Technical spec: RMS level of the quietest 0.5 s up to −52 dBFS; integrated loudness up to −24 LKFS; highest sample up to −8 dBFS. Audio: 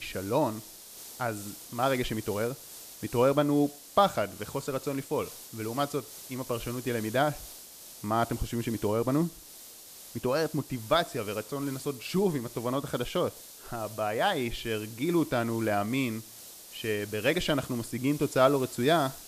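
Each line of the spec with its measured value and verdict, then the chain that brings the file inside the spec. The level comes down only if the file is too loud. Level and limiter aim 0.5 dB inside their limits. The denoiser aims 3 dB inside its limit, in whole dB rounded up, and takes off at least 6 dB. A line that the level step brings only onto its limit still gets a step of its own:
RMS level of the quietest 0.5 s −49 dBFS: out of spec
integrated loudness −30.0 LKFS: in spec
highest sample −9.5 dBFS: in spec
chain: broadband denoise 6 dB, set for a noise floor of −49 dBFS

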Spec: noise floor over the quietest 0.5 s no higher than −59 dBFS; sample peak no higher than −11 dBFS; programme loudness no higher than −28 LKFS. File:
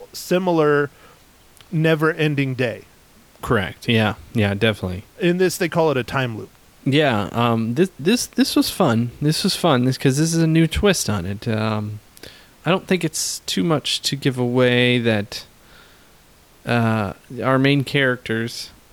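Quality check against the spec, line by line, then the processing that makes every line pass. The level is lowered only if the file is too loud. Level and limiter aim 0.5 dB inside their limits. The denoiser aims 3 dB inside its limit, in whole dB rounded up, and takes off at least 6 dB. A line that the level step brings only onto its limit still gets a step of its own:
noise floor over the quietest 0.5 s −51 dBFS: out of spec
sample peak −5.0 dBFS: out of spec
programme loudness −19.5 LKFS: out of spec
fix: level −9 dB

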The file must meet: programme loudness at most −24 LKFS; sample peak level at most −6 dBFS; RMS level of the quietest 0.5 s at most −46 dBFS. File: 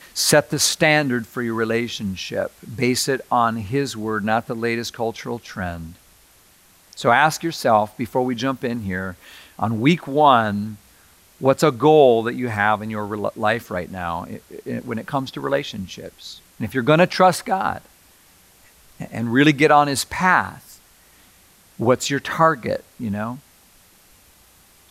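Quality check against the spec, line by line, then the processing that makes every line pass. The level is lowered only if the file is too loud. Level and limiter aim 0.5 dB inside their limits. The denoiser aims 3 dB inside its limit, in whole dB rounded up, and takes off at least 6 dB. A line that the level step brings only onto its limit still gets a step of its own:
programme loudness −20.0 LKFS: out of spec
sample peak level −2.0 dBFS: out of spec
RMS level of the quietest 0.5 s −53 dBFS: in spec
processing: level −4.5 dB

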